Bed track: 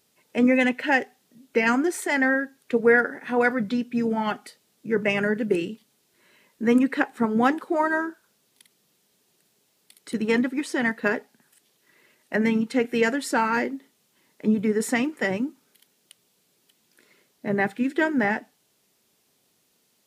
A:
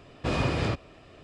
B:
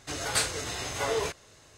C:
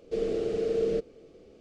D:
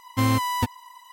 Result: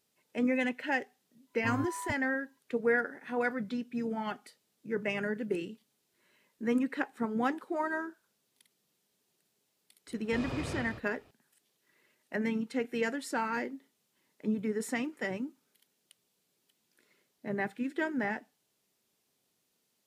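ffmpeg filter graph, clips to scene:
ffmpeg -i bed.wav -i cue0.wav -i cue1.wav -i cue2.wav -i cue3.wav -filter_complex "[0:a]volume=-10dB[link_01];[4:a]afwtdn=0.0501[link_02];[1:a]aecho=1:1:161:0.562[link_03];[link_02]atrim=end=1.12,asetpts=PTS-STARTPTS,volume=-14dB,afade=type=in:duration=0.004:curve=hsin,afade=type=out:start_time=1.116:duration=0.004:curve=hsin,adelay=1470[link_04];[link_03]atrim=end=1.23,asetpts=PTS-STARTPTS,volume=-12.5dB,afade=type=in:duration=0.004:curve=hsin,afade=type=out:start_time=1.226:duration=0.004:curve=hsin,adelay=10080[link_05];[link_01][link_04][link_05]amix=inputs=3:normalize=0" out.wav

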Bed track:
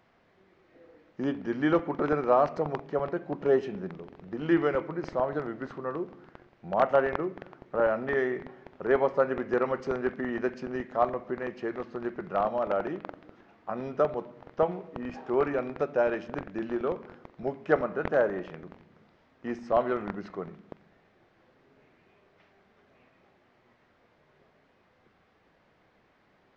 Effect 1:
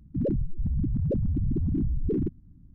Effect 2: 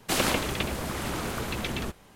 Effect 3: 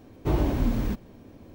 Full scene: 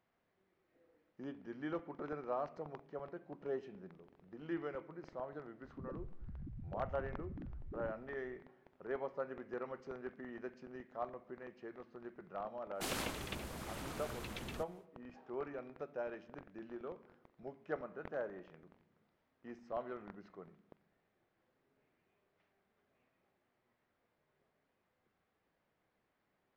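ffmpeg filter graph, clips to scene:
ffmpeg -i bed.wav -i cue0.wav -i cue1.wav -filter_complex "[0:a]volume=-16.5dB[link_01];[1:a]alimiter=level_in=7dB:limit=-24dB:level=0:latency=1:release=71,volume=-7dB[link_02];[2:a]volume=16dB,asoftclip=hard,volume=-16dB[link_03];[link_02]atrim=end=2.74,asetpts=PTS-STARTPTS,volume=-12.5dB,afade=type=in:duration=0.004:curve=hsin,afade=type=out:start_time=2.736:duration=0.004:curve=hsin,adelay=5630[link_04];[link_03]atrim=end=2.15,asetpts=PTS-STARTPTS,volume=-14dB,afade=type=in:duration=0.1,afade=type=out:start_time=2.05:duration=0.1,adelay=12720[link_05];[link_01][link_04][link_05]amix=inputs=3:normalize=0" out.wav

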